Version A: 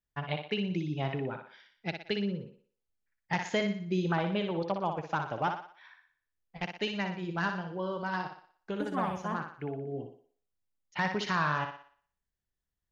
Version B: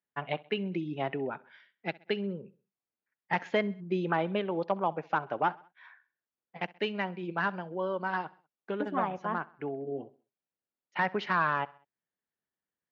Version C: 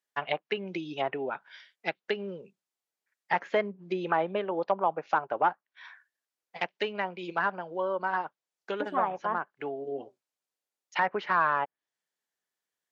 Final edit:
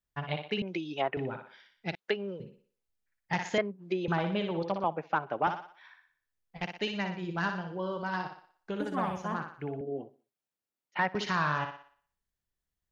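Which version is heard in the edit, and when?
A
0:00.62–0:01.17: punch in from C
0:01.95–0:02.40: punch in from C
0:03.58–0:04.08: punch in from C
0:04.84–0:05.47: punch in from B
0:09.81–0:11.15: punch in from B

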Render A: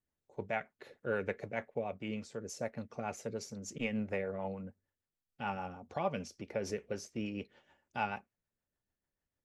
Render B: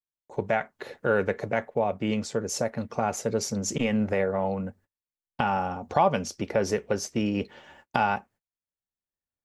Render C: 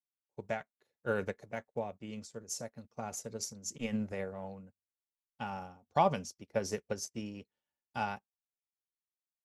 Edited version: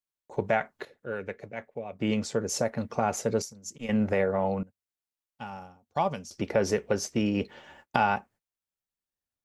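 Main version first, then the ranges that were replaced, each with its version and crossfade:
B
0:00.85–0:01.99: punch in from A
0:03.42–0:03.89: punch in from C
0:04.63–0:06.31: punch in from C

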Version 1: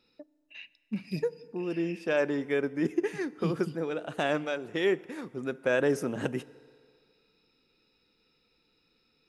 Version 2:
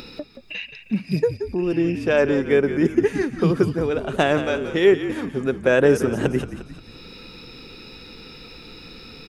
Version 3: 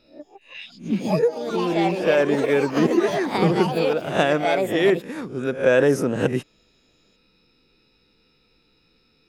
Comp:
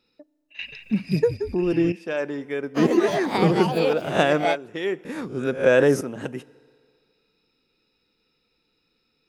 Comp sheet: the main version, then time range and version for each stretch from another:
1
0:00.59–0:01.92: punch in from 2
0:02.77–0:04.54: punch in from 3, crossfade 0.06 s
0:05.05–0:06.01: punch in from 3

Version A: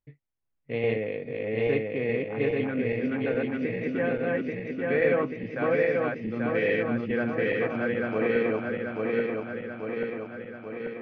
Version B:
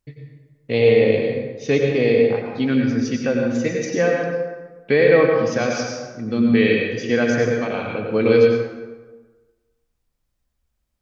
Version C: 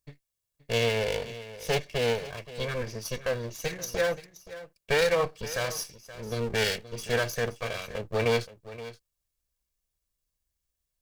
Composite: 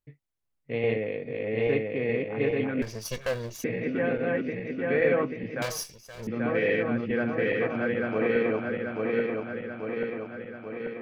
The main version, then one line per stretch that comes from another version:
A
0:02.82–0:03.64: punch in from C
0:05.62–0:06.27: punch in from C
not used: B

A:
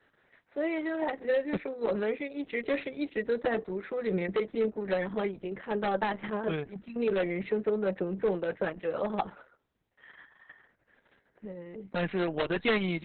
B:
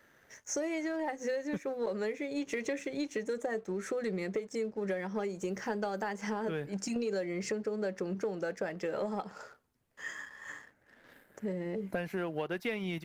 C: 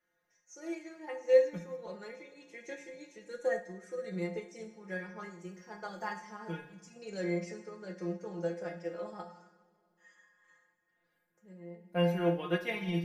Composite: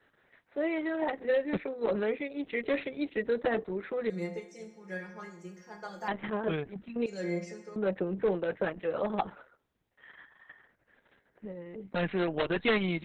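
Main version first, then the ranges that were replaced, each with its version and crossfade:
A
0:04.10–0:06.08: punch in from C
0:07.06–0:07.76: punch in from C
not used: B

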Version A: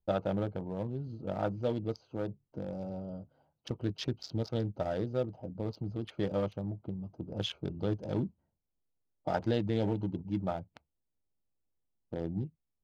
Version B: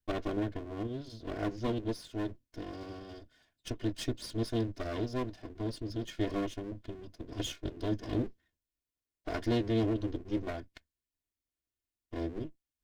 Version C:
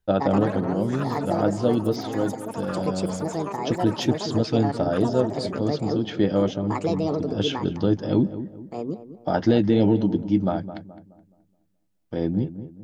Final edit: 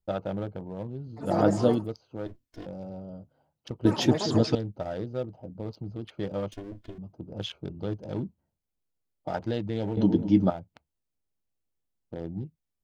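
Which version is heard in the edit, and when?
A
0:01.28–0:01.76: punch in from C, crossfade 0.24 s
0:02.26–0:02.66: punch in from B
0:03.85–0:04.55: punch in from C
0:06.52–0:06.98: punch in from B
0:09.97–0:10.50: punch in from C

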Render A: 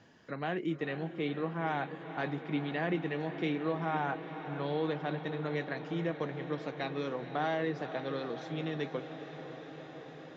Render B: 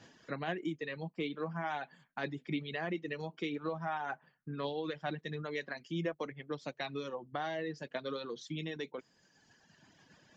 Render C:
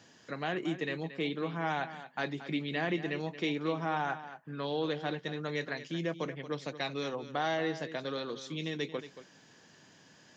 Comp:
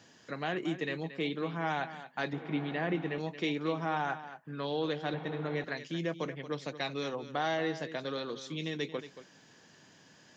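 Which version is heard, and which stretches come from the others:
C
0:02.33–0:03.18: punch in from A
0:05.14–0:05.64: punch in from A
not used: B

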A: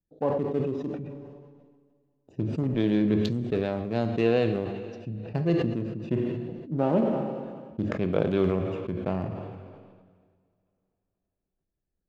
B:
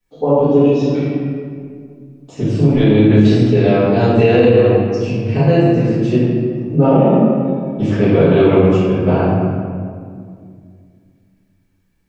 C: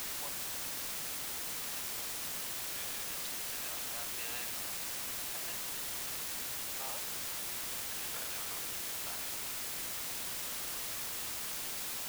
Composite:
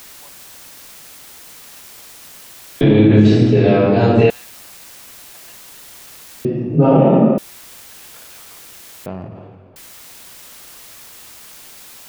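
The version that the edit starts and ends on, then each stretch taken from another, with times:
C
0:02.81–0:04.30: punch in from B
0:06.45–0:07.38: punch in from B
0:09.06–0:09.76: punch in from A

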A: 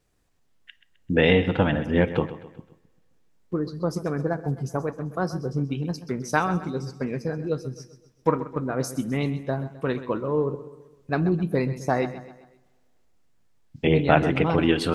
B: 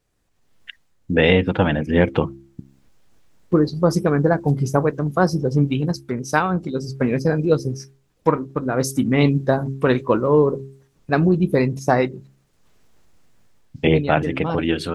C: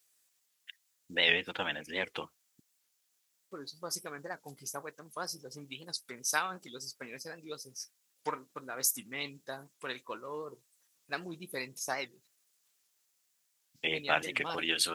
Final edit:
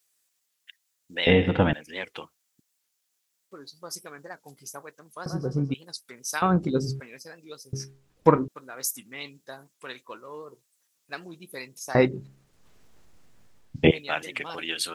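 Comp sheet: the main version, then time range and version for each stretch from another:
C
0:01.27–0:01.73: punch in from A
0:05.26–0:05.74: punch in from A
0:06.42–0:07.00: punch in from B
0:07.73–0:08.48: punch in from B
0:11.95–0:13.91: punch in from B

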